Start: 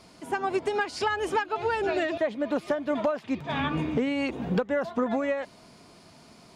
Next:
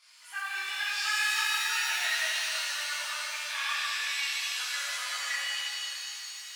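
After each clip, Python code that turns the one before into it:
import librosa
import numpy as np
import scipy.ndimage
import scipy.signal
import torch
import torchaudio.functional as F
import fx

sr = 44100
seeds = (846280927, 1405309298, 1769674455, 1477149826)

y = fx.chorus_voices(x, sr, voices=4, hz=0.64, base_ms=22, depth_ms=1.6, mix_pct=55)
y = scipy.signal.sosfilt(scipy.signal.butter(4, 1400.0, 'highpass', fs=sr, output='sos'), y)
y = fx.rev_shimmer(y, sr, seeds[0], rt60_s=3.1, semitones=7, shimmer_db=-2, drr_db=-6.5)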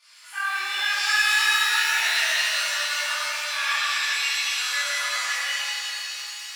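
y = fx.room_shoebox(x, sr, seeds[1], volume_m3=310.0, walls='mixed', distance_m=2.5)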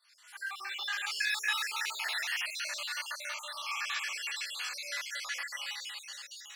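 y = fx.spec_dropout(x, sr, seeds[2], share_pct=51)
y = F.gain(torch.from_numpy(y), -9.0).numpy()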